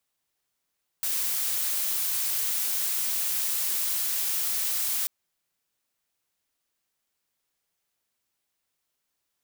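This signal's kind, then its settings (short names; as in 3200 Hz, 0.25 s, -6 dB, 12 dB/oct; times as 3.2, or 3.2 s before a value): noise blue, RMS -27.5 dBFS 4.04 s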